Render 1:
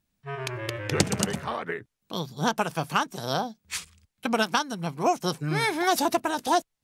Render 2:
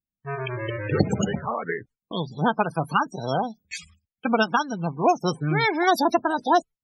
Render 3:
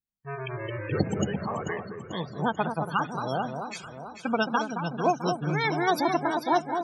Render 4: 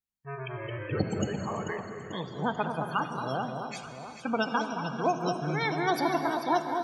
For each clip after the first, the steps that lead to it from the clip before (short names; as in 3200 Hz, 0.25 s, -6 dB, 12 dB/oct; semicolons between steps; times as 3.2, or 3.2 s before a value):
loudest bins only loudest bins 32; gate with hold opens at -46 dBFS; gain +4 dB
echo with dull and thin repeats by turns 0.22 s, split 1300 Hz, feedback 71%, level -6 dB; gain -5 dB
non-linear reverb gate 0.42 s flat, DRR 7.5 dB; gain -3 dB